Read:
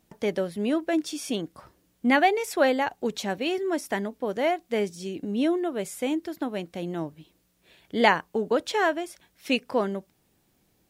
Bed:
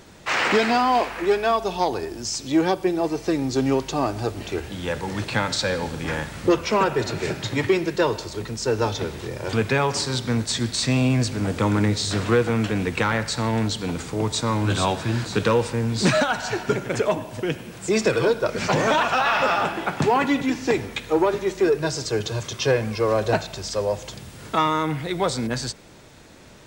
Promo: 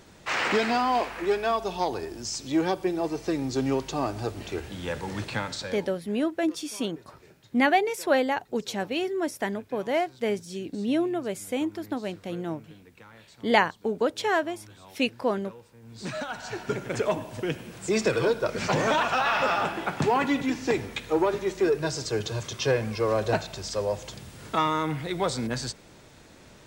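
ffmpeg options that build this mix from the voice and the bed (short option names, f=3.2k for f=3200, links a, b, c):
-filter_complex "[0:a]adelay=5500,volume=-1dB[a];[1:a]volume=19.5dB,afade=t=out:st=5.19:d=0.79:silence=0.0668344,afade=t=in:st=15.81:d=1.3:silence=0.0595662[b];[a][b]amix=inputs=2:normalize=0"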